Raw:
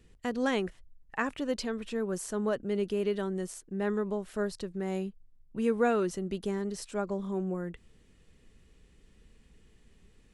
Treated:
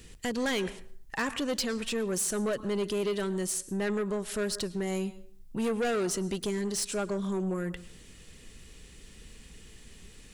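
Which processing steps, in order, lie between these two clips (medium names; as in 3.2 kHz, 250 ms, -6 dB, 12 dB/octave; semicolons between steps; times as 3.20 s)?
treble shelf 2.5 kHz +11.5 dB; in parallel at +1.5 dB: compression, threshold -41 dBFS, peak gain reduction 18.5 dB; on the sum: plate-style reverb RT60 0.51 s, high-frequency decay 0.75×, pre-delay 95 ms, DRR 18.5 dB; saturation -26.5 dBFS, distortion -10 dB; trim +1.5 dB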